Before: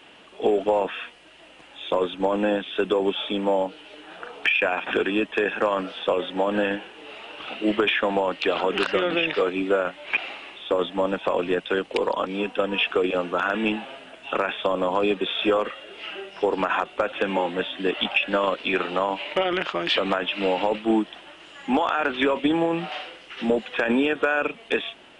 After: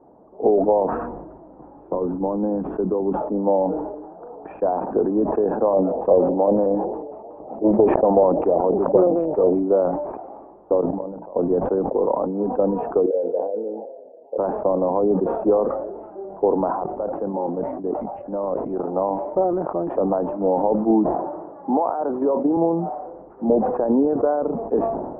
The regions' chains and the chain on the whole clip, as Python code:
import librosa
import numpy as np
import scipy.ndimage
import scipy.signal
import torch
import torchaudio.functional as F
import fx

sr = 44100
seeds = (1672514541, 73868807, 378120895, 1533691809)

y = fx.chain(x, sr, fx.peak_eq(hz=620.0, db=-7.5, octaves=1.2),
    fx.band_squash(depth_pct=40), at=(0.92, 3.21))
y = fx.chain(y, sr, fx.peak_eq(hz=1500.0, db=-7.0, octaves=0.29),
    fx.filter_lfo_lowpass(shape='square', hz=5.4, low_hz=620.0, high_hz=2900.0, q=1.9),
    fx.doppler_dist(depth_ms=0.29), at=(5.64, 9.6))
y = fx.chain(y, sr, fx.level_steps(step_db=20),
    fx.hum_notches(base_hz=60, count=9), at=(10.81, 11.36))
y = fx.chain(y, sr, fx.double_bandpass(hz=1300.0, octaves=2.8),
    fx.peak_eq(hz=630.0, db=5.5, octaves=1.9), at=(13.06, 14.38))
y = fx.chain(y, sr, fx.resample_bad(factor=8, down='none', up='zero_stuff'),
    fx.level_steps(step_db=17),
    fx.transient(attack_db=-1, sustain_db=9), at=(16.72, 18.89))
y = fx.chain(y, sr, fx.highpass(hz=250.0, slope=6),
    fx.band_squash(depth_pct=40), at=(21.14, 22.57))
y = scipy.signal.sosfilt(scipy.signal.butter(6, 890.0, 'lowpass', fs=sr, output='sos'), y)
y = fx.sustainer(y, sr, db_per_s=44.0)
y = y * librosa.db_to_amplitude(3.5)